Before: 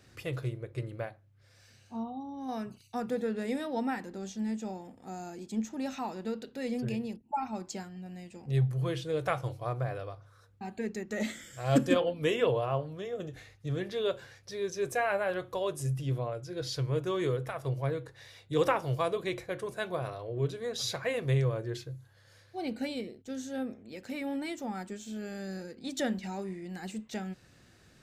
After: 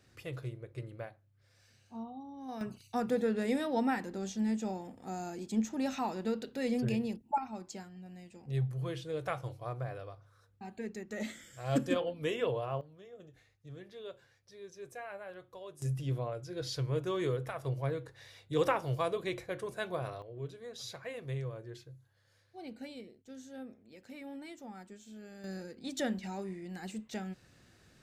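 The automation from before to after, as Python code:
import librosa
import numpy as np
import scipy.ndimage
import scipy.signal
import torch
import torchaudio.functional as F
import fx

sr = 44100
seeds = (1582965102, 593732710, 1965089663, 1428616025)

y = fx.gain(x, sr, db=fx.steps((0.0, -6.0), (2.61, 1.5), (7.38, -5.5), (12.81, -15.0), (15.82, -2.5), (20.22, -10.5), (25.44, -2.5)))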